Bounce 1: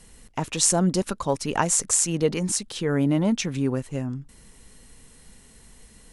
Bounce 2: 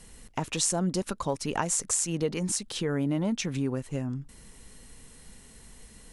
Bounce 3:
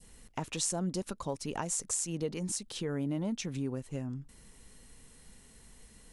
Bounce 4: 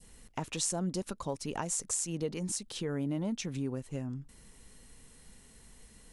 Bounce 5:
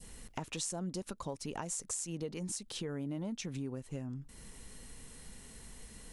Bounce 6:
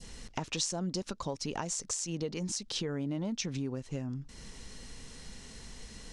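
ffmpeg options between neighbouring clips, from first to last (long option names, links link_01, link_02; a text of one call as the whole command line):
ffmpeg -i in.wav -af "acompressor=threshold=-29dB:ratio=2" out.wav
ffmpeg -i in.wav -af "adynamicequalizer=threshold=0.00501:dfrequency=1600:dqfactor=0.72:tfrequency=1600:tqfactor=0.72:attack=5:release=100:ratio=0.375:range=2:mode=cutabove:tftype=bell,volume=-5.5dB" out.wav
ffmpeg -i in.wav -af anull out.wav
ffmpeg -i in.wav -af "acompressor=threshold=-49dB:ratio=2,volume=5dB" out.wav
ffmpeg -i in.wav -af "lowpass=frequency=5600:width_type=q:width=1.8,volume=4dB" out.wav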